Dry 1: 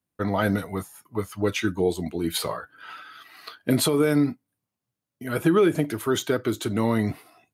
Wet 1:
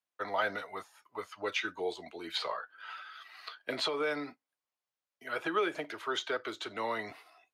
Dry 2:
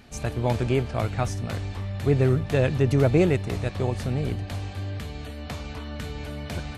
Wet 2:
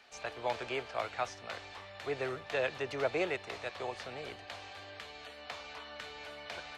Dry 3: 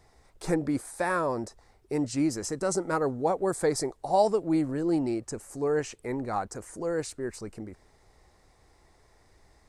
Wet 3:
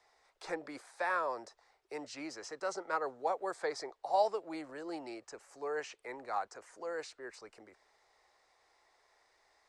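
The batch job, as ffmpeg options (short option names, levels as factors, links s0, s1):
-filter_complex "[0:a]lowshelf=f=470:g=-6,acrossover=split=320|440|5700[s0][s1][s2][s3];[s3]acompressor=threshold=0.002:ratio=4[s4];[s0][s1][s2][s4]amix=inputs=4:normalize=0,acrossover=split=440 6800:gain=0.0891 1 0.2[s5][s6][s7];[s5][s6][s7]amix=inputs=3:normalize=0,volume=0.708"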